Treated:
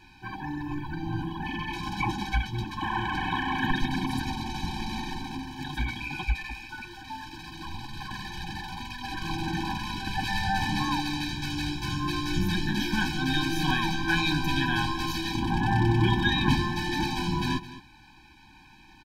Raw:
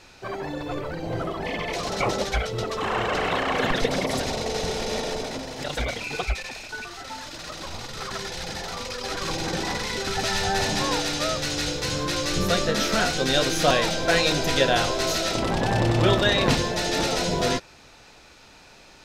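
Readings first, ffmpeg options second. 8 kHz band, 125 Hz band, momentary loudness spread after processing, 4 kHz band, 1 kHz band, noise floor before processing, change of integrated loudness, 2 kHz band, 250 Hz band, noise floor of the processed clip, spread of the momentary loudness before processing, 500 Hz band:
-13.0 dB, 0.0 dB, 13 LU, -6.5 dB, -3.0 dB, -50 dBFS, -4.5 dB, -3.0 dB, 0.0 dB, -53 dBFS, 12 LU, -15.0 dB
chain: -filter_complex "[0:a]equalizer=f=7.1k:t=o:w=1.1:g=-10.5,asplit=2[a][b];[b]aecho=0:1:214:0.168[c];[a][c]amix=inputs=2:normalize=0,afftfilt=real='re*eq(mod(floor(b*sr/1024/370),2),0)':imag='im*eq(mod(floor(b*sr/1024/370),2),0)':win_size=1024:overlap=0.75"

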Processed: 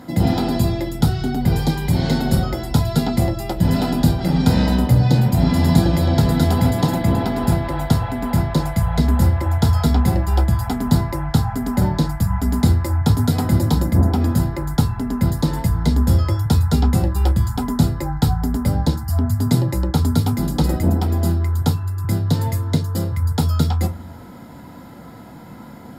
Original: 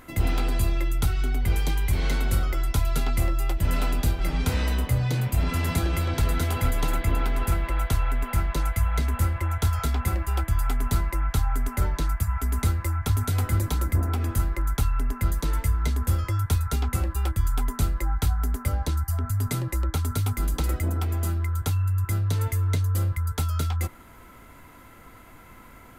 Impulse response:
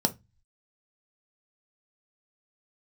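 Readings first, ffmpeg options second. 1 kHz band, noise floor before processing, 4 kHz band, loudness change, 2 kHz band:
+7.0 dB, -48 dBFS, +7.5 dB, +7.5 dB, +2.0 dB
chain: -filter_complex "[1:a]atrim=start_sample=2205,asetrate=41013,aresample=44100[a];[0:a][a]afir=irnorm=-1:irlink=0,volume=-2.5dB"

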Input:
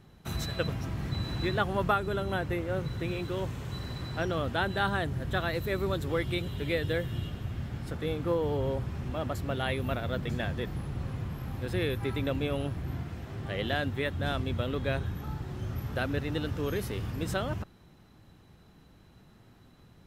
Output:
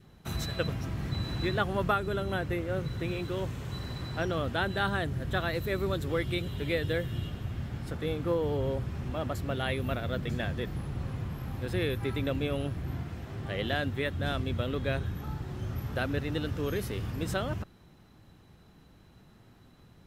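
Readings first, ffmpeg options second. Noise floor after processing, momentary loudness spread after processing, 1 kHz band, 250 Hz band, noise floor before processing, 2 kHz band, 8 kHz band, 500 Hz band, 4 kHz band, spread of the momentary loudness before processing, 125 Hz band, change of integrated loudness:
-57 dBFS, 7 LU, -1.0 dB, 0.0 dB, -57 dBFS, 0.0 dB, 0.0 dB, 0.0 dB, 0.0 dB, 8 LU, 0.0 dB, 0.0 dB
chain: -af "adynamicequalizer=threshold=0.00355:dfrequency=890:dqfactor=2.6:tfrequency=890:tqfactor=2.6:attack=5:release=100:ratio=0.375:range=2:mode=cutabove:tftype=bell"

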